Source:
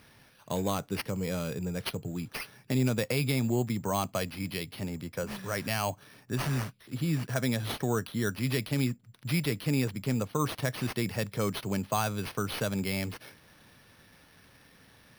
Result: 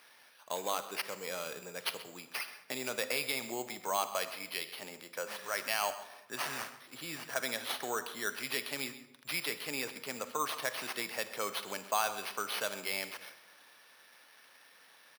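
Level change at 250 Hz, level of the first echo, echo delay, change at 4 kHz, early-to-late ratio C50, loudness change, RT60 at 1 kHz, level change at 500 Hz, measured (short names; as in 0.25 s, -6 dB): -16.5 dB, -16.0 dB, 0.13 s, +0.5 dB, 11.5 dB, -5.0 dB, 0.90 s, -5.5 dB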